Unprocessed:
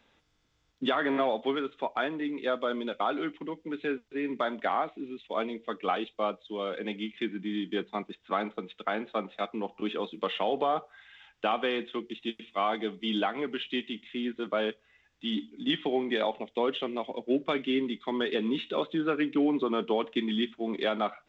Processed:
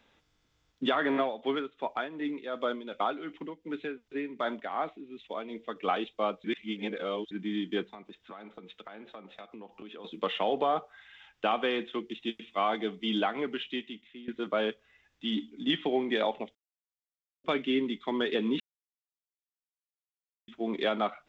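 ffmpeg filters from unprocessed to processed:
ffmpeg -i in.wav -filter_complex "[0:a]asettb=1/sr,asplit=3[link_01][link_02][link_03];[link_01]atrim=end=1.174[link_04];[link_02]atrim=start=1.17:end=5.76,asetpts=PTS-STARTPTS,afade=type=in:duration=0.004:curve=qsin,afade=type=out:start_time=4.586:duration=0.004:curve=qsin,tremolo=f=2.7:d=0.65[link_05];[link_03]atrim=start=5.756[link_06];[link_04][link_05]acrossfade=duration=0.004:curve1=hsin:curve2=qsin[link_07];[link_07][link_06]acrossfade=duration=0.004:curve1=qsin:curve2=hsin,asplit=3[link_08][link_09][link_10];[link_08]afade=type=out:start_time=7.87:duration=0.02[link_11];[link_09]acompressor=threshold=-42dB:ratio=8:attack=3.2:release=140:knee=1:detection=peak,afade=type=in:start_time=7.87:duration=0.02,afade=type=out:start_time=10.04:duration=0.02[link_12];[link_10]afade=type=in:start_time=10.04:duration=0.02[link_13];[link_11][link_12][link_13]amix=inputs=3:normalize=0,asplit=8[link_14][link_15][link_16][link_17][link_18][link_19][link_20][link_21];[link_14]atrim=end=6.442[link_22];[link_15]atrim=start=6.438:end=7.312,asetpts=PTS-STARTPTS,areverse[link_23];[link_16]atrim=start=7.308:end=14.28,asetpts=PTS-STARTPTS,afade=type=out:start_time=6.162:duration=0.81:silence=0.125893[link_24];[link_17]atrim=start=14.28:end=16.55,asetpts=PTS-STARTPTS,afade=type=in:duration=0.004:curve=hsin:silence=0.125893,afade=type=out:start_time=2.266:duration=0.004:curve=hsin[link_25];[link_18]atrim=start=16.55:end=17.44,asetpts=PTS-STARTPTS,volume=0[link_26];[link_19]atrim=start=17.44:end=18.6,asetpts=PTS-STARTPTS,afade=type=in:duration=0.004:curve=hsin,afade=type=out:start_time=1.156:duration=0.004:curve=hsin[link_27];[link_20]atrim=start=18.6:end=20.48,asetpts=PTS-STARTPTS,volume=0[link_28];[link_21]atrim=start=20.48,asetpts=PTS-STARTPTS,afade=type=in:duration=0.004:curve=hsin[link_29];[link_22][link_23]acrossfade=duration=0.004:curve1=hsin:curve2=hsin[link_30];[link_24][link_25][link_26][link_27][link_28][link_29]concat=n=6:v=0:a=1[link_31];[link_30][link_31]acrossfade=duration=0.004:curve1=hsin:curve2=hsin" out.wav

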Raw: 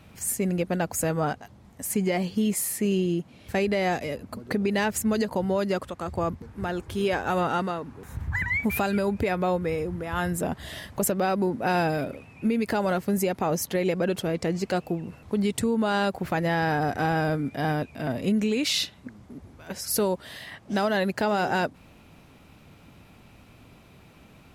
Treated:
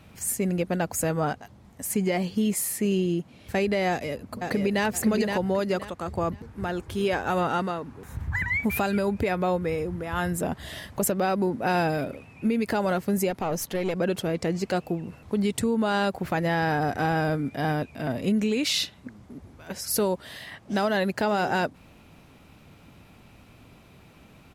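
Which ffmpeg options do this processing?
ffmpeg -i in.wav -filter_complex "[0:a]asplit=2[link_01][link_02];[link_02]afade=type=in:start_time=3.89:duration=0.01,afade=type=out:start_time=4.85:duration=0.01,aecho=0:1:520|1040|1560:0.595662|0.148916|0.0372289[link_03];[link_01][link_03]amix=inputs=2:normalize=0,asettb=1/sr,asplit=3[link_04][link_05][link_06];[link_04]atrim=end=13.304[link_07];[link_05]atrim=start=13.3:end=13.96,asetpts=PTS-STARTPTS,afade=type=in:duration=0.004:curve=qsin,afade=type=out:start_time=0.656:duration=0.004:curve=qsin,aeval=exprs='(tanh(11.2*val(0)+0.4)-tanh(0.4))/11.2':channel_layout=same[link_08];[link_06]atrim=start=13.956[link_09];[link_07][link_08]acrossfade=duration=0.004:curve1=hsin:curve2=qsin[link_10];[link_10][link_09]acrossfade=duration=0.004:curve1=qsin:curve2=hsin" out.wav

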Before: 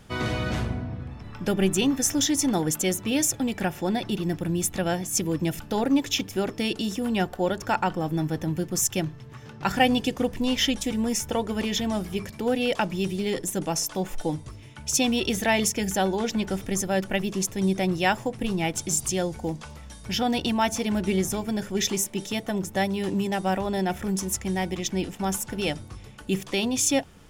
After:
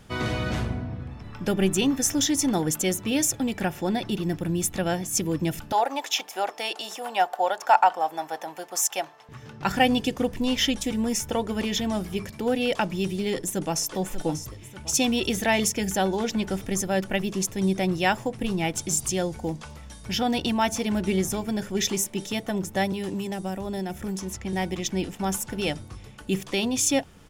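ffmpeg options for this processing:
ffmpeg -i in.wav -filter_complex "[0:a]asettb=1/sr,asplit=3[link_01][link_02][link_03];[link_01]atrim=end=5.724[link_04];[link_02]atrim=start=5.72:end=9.29,asetpts=PTS-STARTPTS,afade=type=in:duration=0.004:curve=qsin,afade=type=out:start_time=3.566:duration=0.004:curve=qsin,highpass=frequency=760:width_type=q:width=3.2[link_05];[link_03]atrim=start=9.286[link_06];[link_04][link_05]acrossfade=duration=0.004:curve1=hsin:curve2=qsin[link_07];[link_07][link_06]acrossfade=duration=0.004:curve1=qsin:curve2=hsin,asplit=2[link_08][link_09];[link_09]afade=type=in:start_time=13.33:duration=0.01,afade=type=out:start_time=13.89:duration=0.01,aecho=0:1:590|1180|1770|2360|2950:0.281838|0.126827|0.0570723|0.0256825|0.0115571[link_10];[link_08][link_10]amix=inputs=2:normalize=0,asettb=1/sr,asplit=3[link_11][link_12][link_13];[link_11]atrim=end=22.924[link_14];[link_12]atrim=start=22.92:end=24.53,asetpts=PTS-STARTPTS,afade=type=in:duration=0.004:curve=qsin,afade=type=out:start_time=1.606:duration=0.004:curve=qsin,acrossover=split=460|5500[link_15][link_16][link_17];[link_15]acompressor=threshold=-29dB:ratio=4[link_18];[link_16]acompressor=threshold=-37dB:ratio=4[link_19];[link_17]acompressor=threshold=-43dB:ratio=4[link_20];[link_18][link_19][link_20]amix=inputs=3:normalize=0[link_21];[link_13]atrim=start=24.526[link_22];[link_14][link_21]acrossfade=duration=0.004:curve1=hsin:curve2=qsin[link_23];[link_23][link_22]acrossfade=duration=0.004:curve1=qsin:curve2=hsin" out.wav

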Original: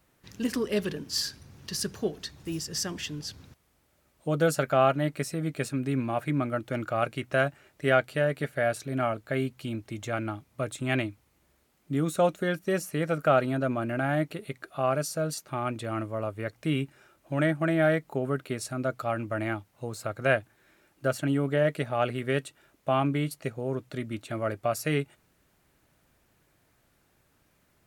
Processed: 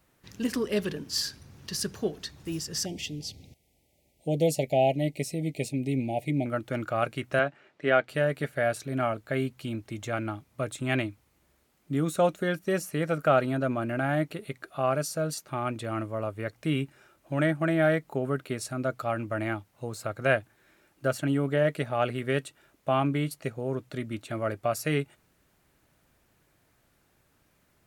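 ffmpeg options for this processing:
ffmpeg -i in.wav -filter_complex "[0:a]asettb=1/sr,asplit=3[link_01][link_02][link_03];[link_01]atrim=end=2.854[link_04];[link_02]atrim=start=2.85:end=6.46,asetpts=PTS-STARTPTS,afade=type=in:duration=0.004:curve=qsin,afade=type=out:start_time=3.606:duration=0.004:curve=qsin,asuperstop=centerf=1300:order=12:qfactor=1.1[link_05];[link_03]atrim=start=6.456[link_06];[link_04][link_05]acrossfade=duration=0.004:curve1=hsin:curve2=qsin[link_07];[link_07][link_06]acrossfade=duration=0.004:curve1=qsin:curve2=hsin,asettb=1/sr,asplit=3[link_08][link_09][link_10];[link_08]atrim=end=7.394[link_11];[link_09]atrim=start=7.39:end=8.09,asetpts=PTS-STARTPTS,afade=type=in:duration=0.004:curve=qsin,afade=type=out:start_time=0.696:duration=0.004:curve=qsin,highpass=190,lowpass=3800[link_12];[link_10]atrim=start=8.086[link_13];[link_11][link_12]acrossfade=duration=0.004:curve1=hsin:curve2=qsin[link_14];[link_14][link_13]acrossfade=duration=0.004:curve1=qsin:curve2=hsin" out.wav

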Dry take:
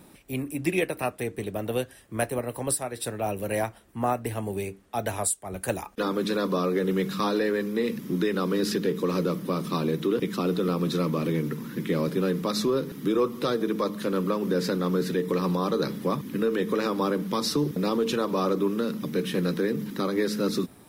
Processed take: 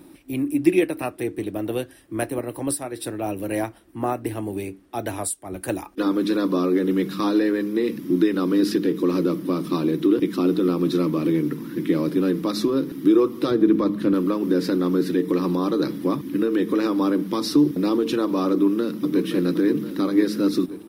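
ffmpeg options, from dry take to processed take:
ffmpeg -i in.wav -filter_complex "[0:a]asettb=1/sr,asplit=3[link_01][link_02][link_03];[link_01]atrim=end=13.514[link_04];[link_02]atrim=start=13.51:end=14.14,asetpts=PTS-STARTPTS,afade=type=in:duration=0.004:curve=qsin,afade=type=out:start_time=0.626:duration=0.004:curve=qsin,bass=frequency=250:gain=9,treble=frequency=4000:gain=-7[link_05];[link_03]atrim=start=14.136[link_06];[link_04][link_05]acrossfade=duration=0.004:curve1=hsin:curve2=qsin[link_07];[link_07][link_06]acrossfade=duration=0.004:curve1=qsin:curve2=hsin,asplit=2[link_08][link_09];[link_09]afade=type=in:start_time=18.51:duration=0.01,afade=type=out:start_time=19.26:duration=0.01,aecho=0:1:520|1040|1560|2080|2600|3120|3640|4160|4680:0.354813|0.230629|0.149909|0.0974406|0.0633364|0.0411687|0.0267596|0.0173938|0.0113059[link_10];[link_08][link_10]amix=inputs=2:normalize=0,superequalizer=6b=3.55:15b=0.631" out.wav

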